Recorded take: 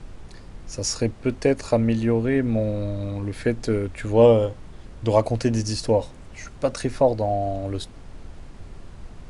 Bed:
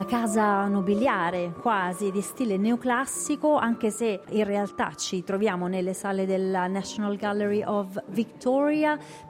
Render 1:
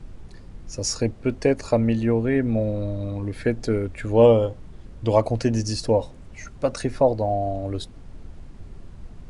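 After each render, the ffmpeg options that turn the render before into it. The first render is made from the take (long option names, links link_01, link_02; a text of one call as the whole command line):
ffmpeg -i in.wav -af "afftdn=noise_reduction=6:noise_floor=-43" out.wav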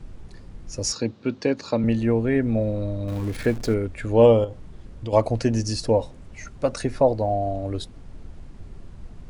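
ffmpeg -i in.wav -filter_complex "[0:a]asettb=1/sr,asplit=3[link_01][link_02][link_03];[link_01]atrim=end=0.924[link_04];[link_02]atrim=start=0.92:end=1.84,asetpts=PTS-STARTPTS,afade=type=in:duration=0.004:curve=qsin,afade=type=out:start_time=0.916:duration=0.004:curve=qsin,highpass=frequency=120:width=0.5412,highpass=frequency=120:width=1.3066,equalizer=frequency=140:width_type=q:width=4:gain=-5,equalizer=frequency=420:width_type=q:width=4:gain=-4,equalizer=frequency=670:width_type=q:width=4:gain=-8,equalizer=frequency=2000:width_type=q:width=4:gain=-5,equalizer=frequency=3900:width_type=q:width=4:gain=7,lowpass=frequency=6300:width=0.5412,lowpass=frequency=6300:width=1.3066[link_05];[link_03]atrim=start=1.836[link_06];[link_04][link_05]acrossfade=duration=0.004:curve1=hsin:curve2=qsin[link_07];[link_07][link_06]acrossfade=duration=0.004:curve1=qsin:curve2=hsin,asettb=1/sr,asplit=3[link_08][link_09][link_10];[link_08]atrim=end=3.084[link_11];[link_09]atrim=start=3.08:end=3.74,asetpts=PTS-STARTPTS,afade=type=in:duration=0.004:curve=qsin,afade=type=out:start_time=0.656:duration=0.004:curve=qsin,aeval=exprs='val(0)+0.5*0.02*sgn(val(0))':channel_layout=same[link_12];[link_10]atrim=start=3.736[link_13];[link_11][link_12]acrossfade=duration=0.004:curve1=hsin:curve2=qsin[link_14];[link_14][link_13]acrossfade=duration=0.004:curve1=qsin:curve2=hsin,asettb=1/sr,asplit=3[link_15][link_16][link_17];[link_15]atrim=end=4.444[link_18];[link_16]atrim=start=4.44:end=5.13,asetpts=PTS-STARTPTS,afade=type=in:duration=0.004:curve=qsin,afade=type=out:start_time=0.686:duration=0.004:curve=qsin,acompressor=threshold=-29dB:ratio=3:attack=3.2:release=140:knee=1:detection=peak[link_19];[link_17]atrim=start=5.126[link_20];[link_18][link_19]acrossfade=duration=0.004:curve1=hsin:curve2=qsin[link_21];[link_21][link_20]acrossfade=duration=0.004:curve1=qsin:curve2=hsin" out.wav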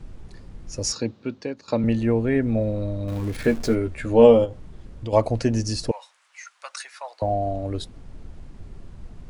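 ffmpeg -i in.wav -filter_complex "[0:a]asettb=1/sr,asplit=3[link_01][link_02][link_03];[link_01]atrim=end=3.444[link_04];[link_02]atrim=start=3.44:end=4.47,asetpts=PTS-STARTPTS,afade=type=in:duration=0.004:curve=qsin,afade=type=out:start_time=1.026:duration=0.004:curve=qsin,asplit=2[link_05][link_06];[link_06]adelay=13,volume=-4dB[link_07];[link_05][link_07]amix=inputs=2:normalize=0,atrim=end_sample=45423[link_08];[link_03]atrim=start=4.466[link_09];[link_04][link_08]acrossfade=duration=0.004:curve1=hsin:curve2=qsin[link_10];[link_10][link_09]acrossfade=duration=0.004:curve1=qsin:curve2=hsin,asettb=1/sr,asplit=3[link_11][link_12][link_13];[link_11]atrim=end=5.914[link_14];[link_12]atrim=start=5.91:end=7.22,asetpts=PTS-STARTPTS,afade=type=in:duration=0.004:curve=qsin,afade=type=out:start_time=1.306:duration=0.004:curve=qsin,highpass=frequency=1100:width=0.5412,highpass=frequency=1100:width=1.3066[link_15];[link_13]atrim=start=7.216[link_16];[link_14][link_15]acrossfade=duration=0.004:curve1=hsin:curve2=qsin[link_17];[link_17][link_16]acrossfade=duration=0.004:curve1=qsin:curve2=hsin,asplit=2[link_18][link_19];[link_18]atrim=end=1.68,asetpts=PTS-STARTPTS,afade=type=out:start_time=0.96:duration=0.72:silence=0.177828[link_20];[link_19]atrim=start=1.68,asetpts=PTS-STARTPTS,afade=type=in:duration=0.004:curve=hsin:silence=0.177828[link_21];[link_20][link_21]concat=n=2:v=0:a=1" out.wav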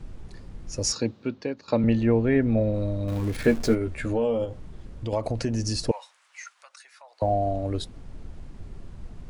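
ffmpeg -i in.wav -filter_complex "[0:a]asettb=1/sr,asplit=3[link_01][link_02][link_03];[link_01]atrim=end=1.284[link_04];[link_02]atrim=start=1.28:end=2.74,asetpts=PTS-STARTPTS,afade=type=in:duration=0.004:curve=qsin,afade=type=out:start_time=1.456:duration=0.004:curve=qsin,lowpass=5300[link_05];[link_03]atrim=start=2.736[link_06];[link_04][link_05]acrossfade=duration=0.004:curve1=hsin:curve2=qsin[link_07];[link_07][link_06]acrossfade=duration=0.004:curve1=qsin:curve2=hsin,asettb=1/sr,asplit=3[link_08][link_09][link_10];[link_08]atrim=end=3.744[link_11];[link_09]atrim=start=3.74:end=5.79,asetpts=PTS-STARTPTS,afade=type=in:duration=0.004:curve=qsin,afade=type=out:start_time=2.046:duration=0.004:curve=qsin,acompressor=threshold=-22dB:ratio=5:attack=3.2:release=140:knee=1:detection=peak[link_12];[link_10]atrim=start=5.786[link_13];[link_11][link_12]acrossfade=duration=0.004:curve1=hsin:curve2=qsin[link_14];[link_14][link_13]acrossfade=duration=0.004:curve1=qsin:curve2=hsin,asplit=3[link_15][link_16][link_17];[link_15]afade=type=out:start_time=6.53:duration=0.02[link_18];[link_16]acompressor=threshold=-57dB:ratio=2:attack=3.2:release=140:knee=1:detection=peak,afade=type=in:start_time=6.53:duration=0.02,afade=type=out:start_time=7.2:duration=0.02[link_19];[link_17]afade=type=in:start_time=7.2:duration=0.02[link_20];[link_18][link_19][link_20]amix=inputs=3:normalize=0" out.wav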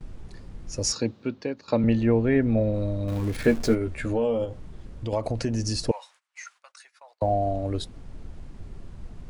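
ffmpeg -i in.wav -af "agate=range=-22dB:threshold=-52dB:ratio=16:detection=peak" out.wav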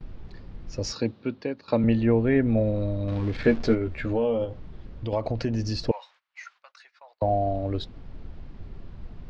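ffmpeg -i in.wav -af "lowpass=frequency=4700:width=0.5412,lowpass=frequency=4700:width=1.3066" out.wav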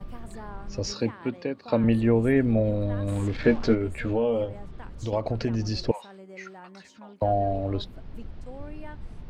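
ffmpeg -i in.wav -i bed.wav -filter_complex "[1:a]volume=-20dB[link_01];[0:a][link_01]amix=inputs=2:normalize=0" out.wav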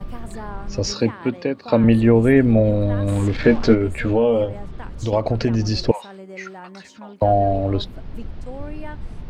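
ffmpeg -i in.wav -af "volume=7.5dB,alimiter=limit=-3dB:level=0:latency=1" out.wav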